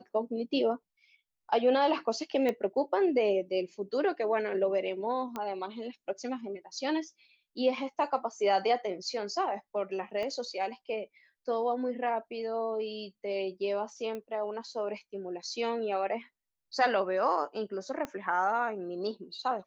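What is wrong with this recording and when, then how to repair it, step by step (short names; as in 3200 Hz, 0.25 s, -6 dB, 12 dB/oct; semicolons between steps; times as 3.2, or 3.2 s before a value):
2.49 pop -18 dBFS
5.36 pop -22 dBFS
10.23 pop -25 dBFS
14.15 pop -26 dBFS
18.05 pop -22 dBFS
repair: de-click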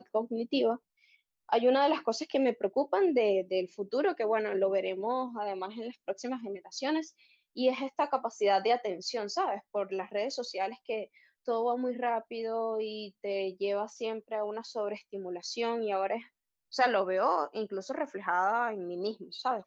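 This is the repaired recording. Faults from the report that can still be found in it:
10.23 pop
18.05 pop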